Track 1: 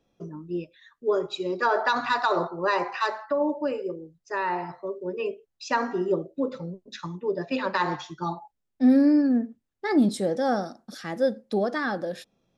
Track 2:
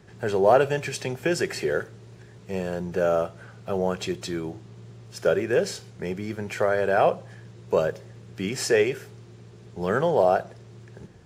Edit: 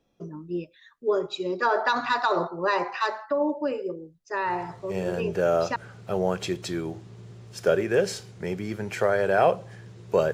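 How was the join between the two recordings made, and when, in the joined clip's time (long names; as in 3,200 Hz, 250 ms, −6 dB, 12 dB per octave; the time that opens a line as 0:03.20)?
track 1
0:05.11: continue with track 2 from 0:02.70, crossfade 1.30 s logarithmic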